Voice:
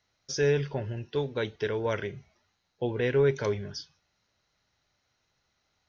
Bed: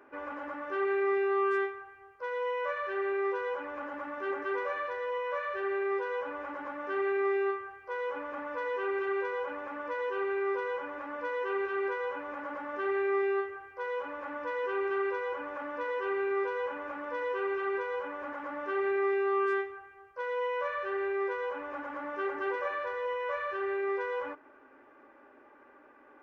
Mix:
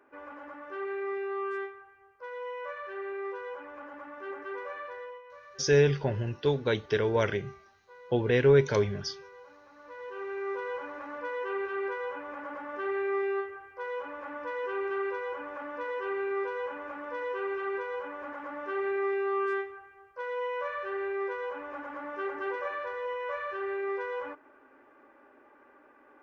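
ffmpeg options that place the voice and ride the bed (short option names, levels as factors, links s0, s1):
-filter_complex "[0:a]adelay=5300,volume=1.41[s0];[1:a]volume=3.16,afade=t=out:st=4.99:d=0.23:silence=0.281838,afade=t=in:st=9.74:d=1:silence=0.16788[s1];[s0][s1]amix=inputs=2:normalize=0"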